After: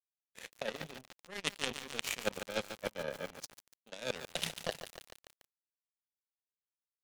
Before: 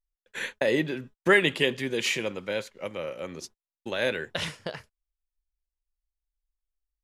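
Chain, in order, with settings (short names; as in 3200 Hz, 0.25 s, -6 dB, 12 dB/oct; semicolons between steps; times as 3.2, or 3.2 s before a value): reverse; compressor 10:1, threshold -32 dBFS, peak gain reduction 17.5 dB; reverse; fixed phaser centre 330 Hz, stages 6; power-law curve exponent 3; lo-fi delay 0.144 s, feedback 80%, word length 9-bit, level -9 dB; gain +14 dB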